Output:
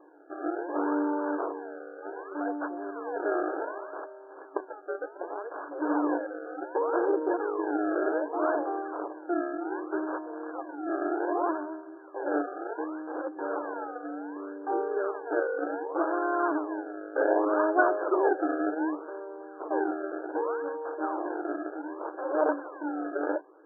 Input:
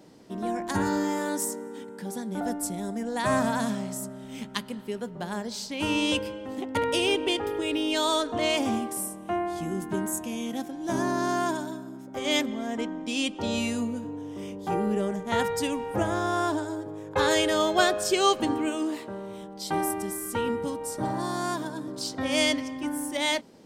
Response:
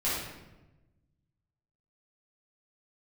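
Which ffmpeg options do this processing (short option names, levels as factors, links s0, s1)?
-af "acrusher=samples=30:mix=1:aa=0.000001:lfo=1:lforange=30:lforate=0.66,bandreject=f=379.8:t=h:w=4,bandreject=f=759.6:t=h:w=4,bandreject=f=1139.4:t=h:w=4,afftfilt=real='re*between(b*sr/4096,290,1700)':imag='im*between(b*sr/4096,290,1700)':win_size=4096:overlap=0.75"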